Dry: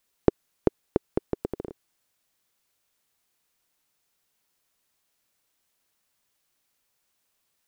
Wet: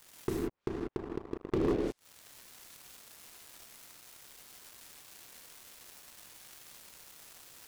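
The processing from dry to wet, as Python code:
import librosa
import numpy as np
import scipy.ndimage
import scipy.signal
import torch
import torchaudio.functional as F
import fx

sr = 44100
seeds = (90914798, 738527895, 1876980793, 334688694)

y = fx.env_lowpass_down(x, sr, base_hz=500.0, full_db=-31.0)
y = fx.auto_swell(y, sr, attack_ms=481.0)
y = fx.rev_gated(y, sr, seeds[0], gate_ms=220, shape='flat', drr_db=2.0)
y = fx.leveller(y, sr, passes=5)
y = y * 10.0 ** (11.0 / 20.0)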